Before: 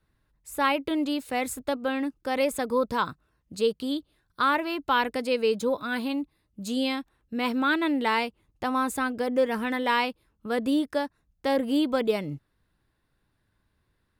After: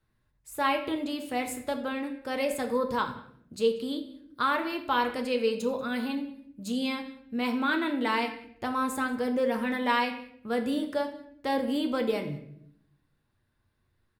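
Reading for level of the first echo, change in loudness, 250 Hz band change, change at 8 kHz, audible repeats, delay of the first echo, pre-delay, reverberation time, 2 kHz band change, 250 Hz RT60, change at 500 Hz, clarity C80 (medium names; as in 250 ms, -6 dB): -21.5 dB, -2.5 dB, -2.5 dB, -3.0 dB, 1, 187 ms, 8 ms, 0.70 s, -2.5 dB, 1.0 s, -2.5 dB, 12.0 dB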